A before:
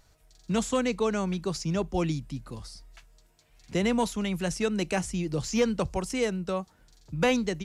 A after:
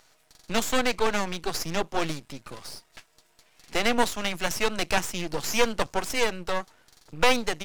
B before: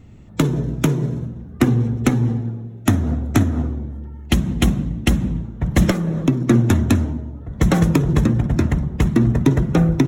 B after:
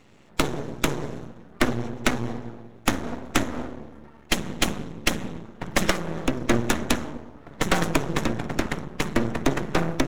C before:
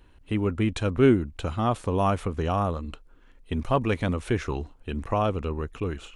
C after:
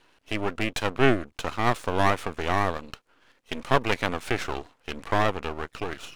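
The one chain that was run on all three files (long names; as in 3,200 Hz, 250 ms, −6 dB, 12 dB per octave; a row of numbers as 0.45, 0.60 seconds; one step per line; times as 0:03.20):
meter weighting curve A
half-wave rectification
loudness normalisation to −27 LKFS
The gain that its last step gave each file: +10.0, +5.0, +7.5 decibels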